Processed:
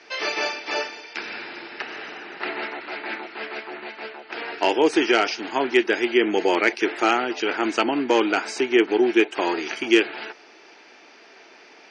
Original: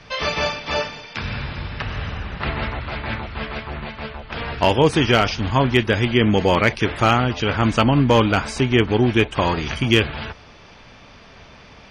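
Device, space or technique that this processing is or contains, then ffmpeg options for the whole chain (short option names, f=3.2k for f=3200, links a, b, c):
phone speaker on a table: -af "highpass=f=340:w=0.5412,highpass=f=340:w=1.3066,equalizer=f=340:t=q:w=4:g=7,equalizer=f=550:t=q:w=4:g=-8,equalizer=f=1.1k:t=q:w=4:g=-9,equalizer=f=3.4k:t=q:w=4:g=-7,lowpass=f=7.9k:w=0.5412,lowpass=f=7.9k:w=1.3066"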